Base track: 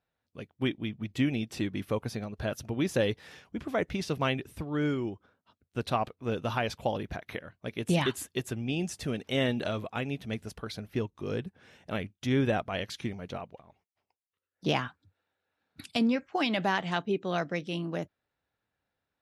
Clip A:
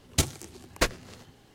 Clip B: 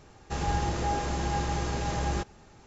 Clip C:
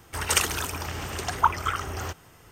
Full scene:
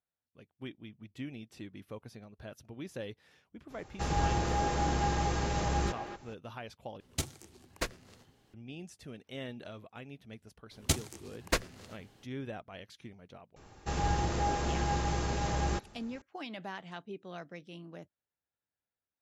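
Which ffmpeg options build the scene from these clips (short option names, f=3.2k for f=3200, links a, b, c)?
-filter_complex "[2:a]asplit=2[a][b];[1:a]asplit=2[c][d];[0:a]volume=-14dB[e];[a]asplit=2[f][g];[g]adelay=240,highpass=300,lowpass=3.4k,asoftclip=type=hard:threshold=-24dB,volume=-7dB[h];[f][h]amix=inputs=2:normalize=0[i];[e]asplit=2[j][k];[j]atrim=end=7.004[l];[c]atrim=end=1.54,asetpts=PTS-STARTPTS,volume=-10dB[m];[k]atrim=start=8.536[n];[i]atrim=end=2.66,asetpts=PTS-STARTPTS,volume=-1.5dB,afade=t=in:d=0.02,afade=t=out:st=2.64:d=0.02,adelay=162729S[o];[d]atrim=end=1.54,asetpts=PTS-STARTPTS,volume=-4.5dB,afade=t=in:d=0.004:c=hsin,afade=t=out:st=1.536:d=0.004:c=hsin,adelay=10710[p];[b]atrim=end=2.66,asetpts=PTS-STARTPTS,volume=-2dB,afade=t=in:d=0.004:c=hsin,afade=t=out:st=2.656:d=0.004:c=hsin,adelay=13560[q];[l][m]acrossfade=d=0.004:c1=hsin:c2=hsin[r];[r][n]acrossfade=d=0.004:c1=hsin:c2=hsin[s];[s][o][p][q]amix=inputs=4:normalize=0"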